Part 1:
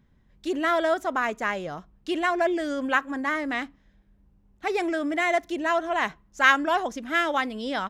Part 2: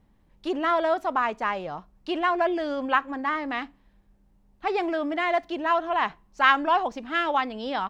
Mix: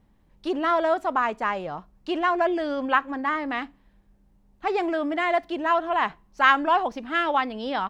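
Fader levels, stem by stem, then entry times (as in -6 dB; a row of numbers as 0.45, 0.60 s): -17.0, +0.5 dB; 0.00, 0.00 s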